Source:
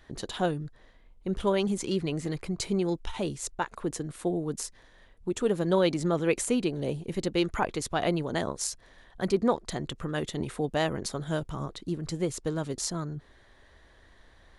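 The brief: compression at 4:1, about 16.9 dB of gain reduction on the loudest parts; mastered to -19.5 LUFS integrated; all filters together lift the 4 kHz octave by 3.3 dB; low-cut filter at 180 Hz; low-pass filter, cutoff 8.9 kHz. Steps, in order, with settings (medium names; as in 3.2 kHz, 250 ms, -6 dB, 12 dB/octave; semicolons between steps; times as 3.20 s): high-pass 180 Hz; low-pass 8.9 kHz; peaking EQ 4 kHz +4.5 dB; compression 4:1, threshold -41 dBFS; trim +24 dB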